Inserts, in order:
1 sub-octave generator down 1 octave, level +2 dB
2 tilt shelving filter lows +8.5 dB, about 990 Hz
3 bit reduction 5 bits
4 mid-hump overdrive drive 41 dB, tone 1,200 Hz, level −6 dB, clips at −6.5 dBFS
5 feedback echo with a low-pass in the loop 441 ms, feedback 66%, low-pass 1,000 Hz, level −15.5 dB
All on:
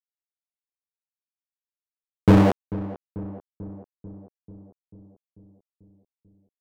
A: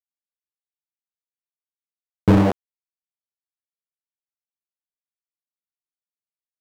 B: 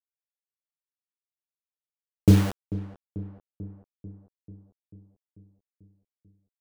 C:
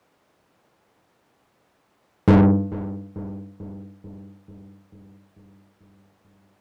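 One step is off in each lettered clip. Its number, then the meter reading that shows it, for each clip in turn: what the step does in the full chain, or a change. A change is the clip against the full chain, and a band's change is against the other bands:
5, echo-to-direct ratio −19.0 dB to none audible
4, change in crest factor +3.0 dB
3, distortion level −17 dB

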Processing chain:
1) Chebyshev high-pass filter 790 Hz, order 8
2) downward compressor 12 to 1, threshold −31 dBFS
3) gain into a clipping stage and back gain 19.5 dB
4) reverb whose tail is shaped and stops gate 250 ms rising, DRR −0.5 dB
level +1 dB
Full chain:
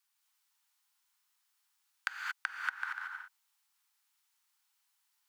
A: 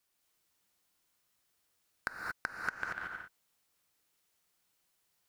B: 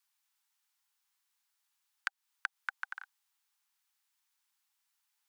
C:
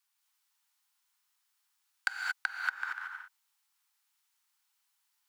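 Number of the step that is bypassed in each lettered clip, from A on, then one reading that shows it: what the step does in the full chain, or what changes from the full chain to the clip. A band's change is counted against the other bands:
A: 1, 4 kHz band −5.5 dB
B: 4, change in momentary loudness spread −2 LU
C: 2, average gain reduction 3.0 dB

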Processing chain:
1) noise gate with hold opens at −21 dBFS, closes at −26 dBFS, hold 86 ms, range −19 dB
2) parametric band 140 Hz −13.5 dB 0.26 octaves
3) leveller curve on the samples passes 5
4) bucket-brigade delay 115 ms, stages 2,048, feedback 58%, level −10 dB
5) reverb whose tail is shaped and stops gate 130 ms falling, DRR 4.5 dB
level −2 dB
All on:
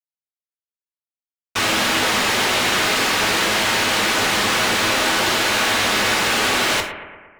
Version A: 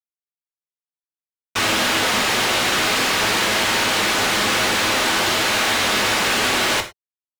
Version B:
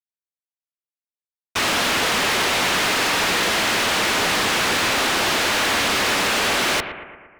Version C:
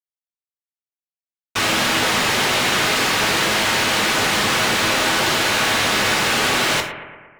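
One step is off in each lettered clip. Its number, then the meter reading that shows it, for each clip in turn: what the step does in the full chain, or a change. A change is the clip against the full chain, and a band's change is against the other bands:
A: 4, echo-to-direct ratio −2.5 dB to −4.5 dB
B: 5, echo-to-direct ratio −2.5 dB to −8.5 dB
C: 2, 125 Hz band +3.0 dB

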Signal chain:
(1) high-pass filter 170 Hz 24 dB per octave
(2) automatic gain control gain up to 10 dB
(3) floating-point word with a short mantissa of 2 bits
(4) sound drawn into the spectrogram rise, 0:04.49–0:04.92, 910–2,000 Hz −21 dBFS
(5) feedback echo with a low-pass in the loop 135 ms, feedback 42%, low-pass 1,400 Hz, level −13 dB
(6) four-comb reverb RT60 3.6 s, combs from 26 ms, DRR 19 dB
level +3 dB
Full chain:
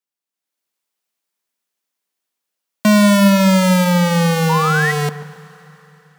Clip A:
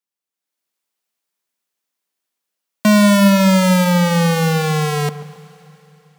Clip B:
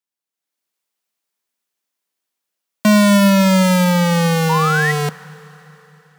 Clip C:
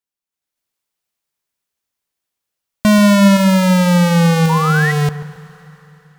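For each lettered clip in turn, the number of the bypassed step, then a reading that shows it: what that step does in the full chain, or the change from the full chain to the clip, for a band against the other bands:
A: 4, 2 kHz band −2.5 dB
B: 5, echo-to-direct ratio −14.5 dB to −19.0 dB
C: 1, 125 Hz band +3.0 dB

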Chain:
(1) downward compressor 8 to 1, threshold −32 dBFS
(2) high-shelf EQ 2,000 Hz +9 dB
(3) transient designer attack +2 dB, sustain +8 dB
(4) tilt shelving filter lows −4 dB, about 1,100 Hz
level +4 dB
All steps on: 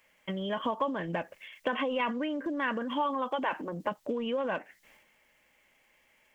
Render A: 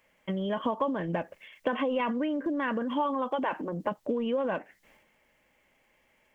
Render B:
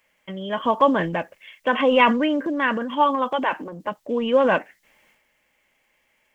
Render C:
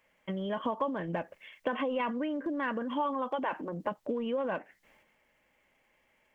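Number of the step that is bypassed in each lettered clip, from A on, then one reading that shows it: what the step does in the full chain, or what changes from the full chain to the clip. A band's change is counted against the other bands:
4, 4 kHz band −5.5 dB
1, 125 Hz band −4.0 dB
2, 4 kHz band −5.5 dB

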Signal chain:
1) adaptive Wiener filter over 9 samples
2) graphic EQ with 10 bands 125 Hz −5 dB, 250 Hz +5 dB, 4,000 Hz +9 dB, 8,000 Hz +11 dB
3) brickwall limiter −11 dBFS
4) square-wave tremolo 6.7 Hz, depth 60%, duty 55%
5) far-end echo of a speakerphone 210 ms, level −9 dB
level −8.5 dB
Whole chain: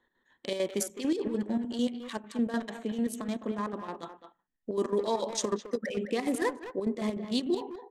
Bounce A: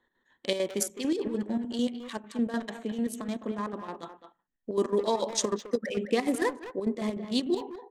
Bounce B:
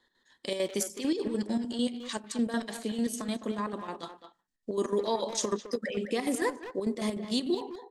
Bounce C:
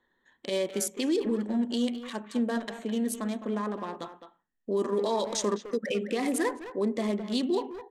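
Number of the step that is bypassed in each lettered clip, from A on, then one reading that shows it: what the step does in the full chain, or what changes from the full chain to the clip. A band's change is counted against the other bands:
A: 3, change in crest factor +7.5 dB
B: 1, 4 kHz band +2.5 dB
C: 4, change in crest factor −2.0 dB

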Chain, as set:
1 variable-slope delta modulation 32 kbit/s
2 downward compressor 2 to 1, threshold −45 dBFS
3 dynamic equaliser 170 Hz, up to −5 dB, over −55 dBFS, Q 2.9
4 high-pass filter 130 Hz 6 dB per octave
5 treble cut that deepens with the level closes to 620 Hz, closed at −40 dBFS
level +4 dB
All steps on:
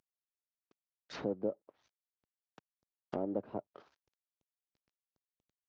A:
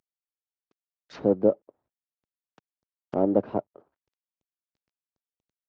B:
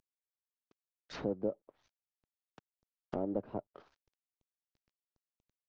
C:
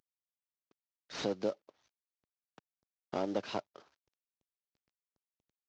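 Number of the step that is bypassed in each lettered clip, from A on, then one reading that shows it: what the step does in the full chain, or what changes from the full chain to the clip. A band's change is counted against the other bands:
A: 2, average gain reduction 11.0 dB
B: 4, 125 Hz band +2.5 dB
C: 5, 4 kHz band +8.5 dB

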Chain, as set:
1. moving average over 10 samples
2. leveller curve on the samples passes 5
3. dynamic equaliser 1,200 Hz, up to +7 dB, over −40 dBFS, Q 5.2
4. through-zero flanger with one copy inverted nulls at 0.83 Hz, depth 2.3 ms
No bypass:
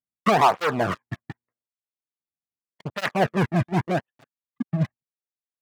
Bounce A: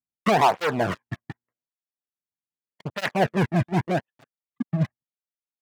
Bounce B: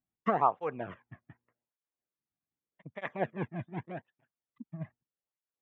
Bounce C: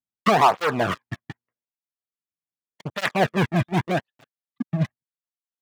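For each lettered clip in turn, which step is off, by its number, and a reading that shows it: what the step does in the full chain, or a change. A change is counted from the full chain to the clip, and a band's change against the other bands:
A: 3, change in crest factor −3.0 dB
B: 2, change in crest factor +7.0 dB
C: 1, 4 kHz band +2.0 dB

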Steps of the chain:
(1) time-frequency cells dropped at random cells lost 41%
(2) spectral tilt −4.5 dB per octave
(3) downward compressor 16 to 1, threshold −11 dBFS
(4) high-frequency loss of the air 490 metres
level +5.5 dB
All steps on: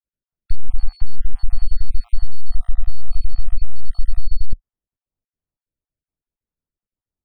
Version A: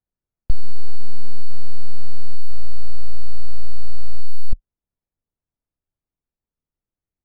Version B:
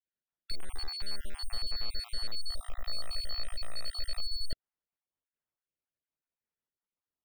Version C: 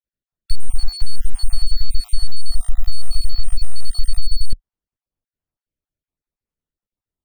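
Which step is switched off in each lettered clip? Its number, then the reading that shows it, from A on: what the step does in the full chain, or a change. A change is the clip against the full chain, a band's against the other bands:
1, change in crest factor −2.0 dB
2, change in crest factor +2.5 dB
4, change in integrated loudness +2.5 LU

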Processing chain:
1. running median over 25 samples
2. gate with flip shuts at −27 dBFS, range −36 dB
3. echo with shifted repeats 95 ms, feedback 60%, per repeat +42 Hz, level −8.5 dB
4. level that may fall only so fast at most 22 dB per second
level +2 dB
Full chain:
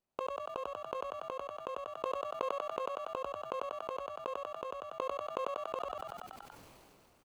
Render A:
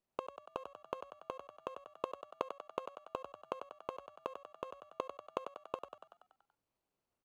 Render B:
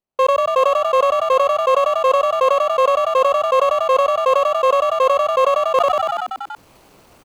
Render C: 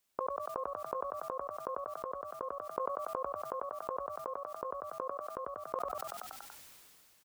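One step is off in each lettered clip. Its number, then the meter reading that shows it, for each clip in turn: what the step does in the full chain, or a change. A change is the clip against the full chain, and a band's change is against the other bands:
4, change in crest factor +6.5 dB
2, change in momentary loudness spread −5 LU
1, 8 kHz band +7.0 dB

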